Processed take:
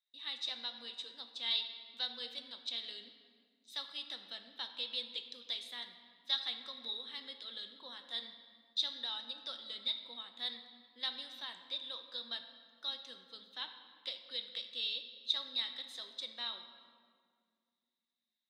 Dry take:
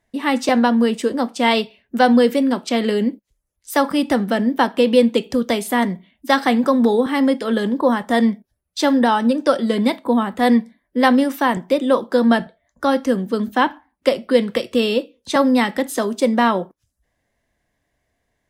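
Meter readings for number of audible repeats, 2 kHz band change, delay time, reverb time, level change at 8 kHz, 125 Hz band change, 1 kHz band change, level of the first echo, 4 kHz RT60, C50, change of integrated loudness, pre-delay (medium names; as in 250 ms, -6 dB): no echo, -25.5 dB, no echo, 2.0 s, -25.5 dB, no reading, -34.0 dB, no echo, 1.3 s, 8.5 dB, -21.5 dB, 5 ms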